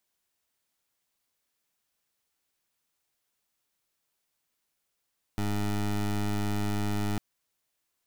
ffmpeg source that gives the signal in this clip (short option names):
-f lavfi -i "aevalsrc='0.0376*(2*lt(mod(103*t,1),0.19)-1)':d=1.8:s=44100"